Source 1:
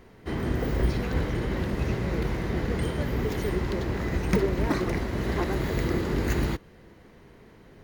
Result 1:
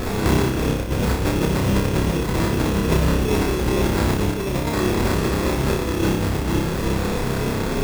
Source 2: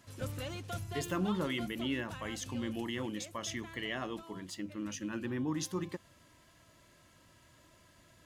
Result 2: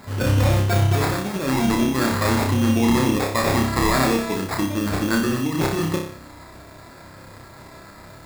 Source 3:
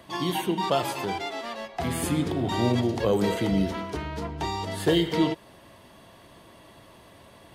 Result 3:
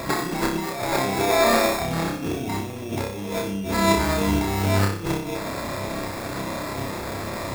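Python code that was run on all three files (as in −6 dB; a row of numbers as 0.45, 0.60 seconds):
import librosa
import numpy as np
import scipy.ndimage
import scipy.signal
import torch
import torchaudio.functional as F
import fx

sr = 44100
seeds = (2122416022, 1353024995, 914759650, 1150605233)

y = fx.over_compress(x, sr, threshold_db=-38.0, ratio=-1.0)
y = fx.sample_hold(y, sr, seeds[0], rate_hz=3000.0, jitter_pct=0)
y = fx.room_flutter(y, sr, wall_m=5.2, rt60_s=0.54)
y = librosa.util.normalize(y) * 10.0 ** (-6 / 20.0)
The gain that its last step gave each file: +15.5, +16.0, +9.5 decibels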